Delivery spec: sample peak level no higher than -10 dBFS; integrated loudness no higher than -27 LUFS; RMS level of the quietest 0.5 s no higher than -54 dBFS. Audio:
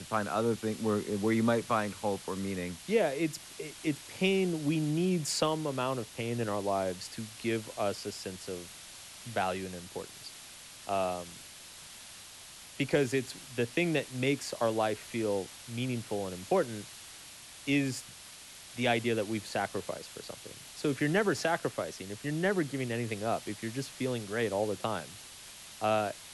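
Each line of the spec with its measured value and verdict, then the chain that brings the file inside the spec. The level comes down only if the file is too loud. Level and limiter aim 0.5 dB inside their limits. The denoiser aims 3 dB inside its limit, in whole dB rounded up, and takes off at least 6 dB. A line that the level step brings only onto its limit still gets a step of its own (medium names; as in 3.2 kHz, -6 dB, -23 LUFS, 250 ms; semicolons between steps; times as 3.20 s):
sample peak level -16.0 dBFS: pass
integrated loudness -32.5 LUFS: pass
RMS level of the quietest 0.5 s -50 dBFS: fail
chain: noise reduction 7 dB, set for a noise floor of -50 dBFS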